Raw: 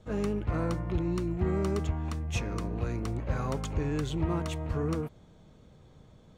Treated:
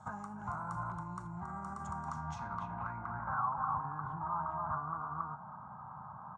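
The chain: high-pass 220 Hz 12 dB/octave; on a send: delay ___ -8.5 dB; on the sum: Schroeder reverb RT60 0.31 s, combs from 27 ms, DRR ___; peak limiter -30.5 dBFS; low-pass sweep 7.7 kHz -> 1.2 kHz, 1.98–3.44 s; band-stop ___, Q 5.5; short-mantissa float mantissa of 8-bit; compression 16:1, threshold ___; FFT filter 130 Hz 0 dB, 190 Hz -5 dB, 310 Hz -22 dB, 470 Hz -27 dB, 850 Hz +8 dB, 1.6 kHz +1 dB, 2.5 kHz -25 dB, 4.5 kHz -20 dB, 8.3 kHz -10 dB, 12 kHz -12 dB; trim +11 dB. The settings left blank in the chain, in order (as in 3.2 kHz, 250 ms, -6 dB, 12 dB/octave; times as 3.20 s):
276 ms, 14 dB, 1.8 kHz, -44 dBFS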